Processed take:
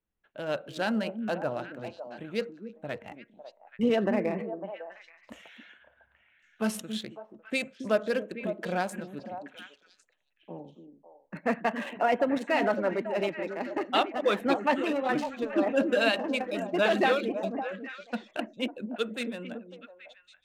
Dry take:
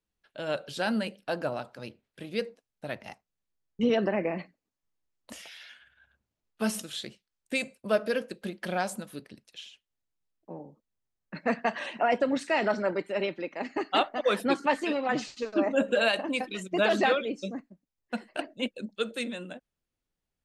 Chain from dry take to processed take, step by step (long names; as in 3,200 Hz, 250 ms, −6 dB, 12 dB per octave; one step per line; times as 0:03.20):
adaptive Wiener filter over 9 samples
echo through a band-pass that steps 276 ms, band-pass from 270 Hz, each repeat 1.4 octaves, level −5 dB